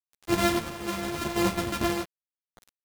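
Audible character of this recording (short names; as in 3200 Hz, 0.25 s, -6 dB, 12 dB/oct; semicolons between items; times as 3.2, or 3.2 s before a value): a buzz of ramps at a fixed pitch in blocks of 128 samples; tremolo triangle 0.87 Hz, depth 70%; a quantiser's noise floor 8-bit, dither none; a shimmering, thickened sound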